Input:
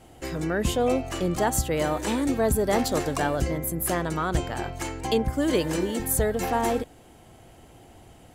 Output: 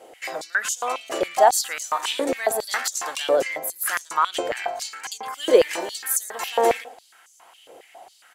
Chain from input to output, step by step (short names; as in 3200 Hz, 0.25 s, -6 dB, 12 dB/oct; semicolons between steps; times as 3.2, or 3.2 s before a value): echo 0.114 s -17 dB; stepped high-pass 7.3 Hz 490–6300 Hz; gain +2 dB